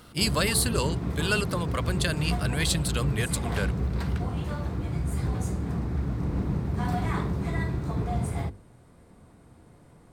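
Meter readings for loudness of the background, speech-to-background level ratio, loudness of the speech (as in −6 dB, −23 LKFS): −30.0 LKFS, 1.5 dB, −28.5 LKFS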